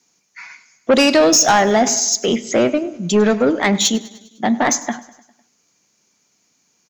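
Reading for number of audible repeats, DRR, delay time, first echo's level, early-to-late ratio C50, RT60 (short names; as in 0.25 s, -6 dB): 4, none, 0.101 s, -20.0 dB, none, none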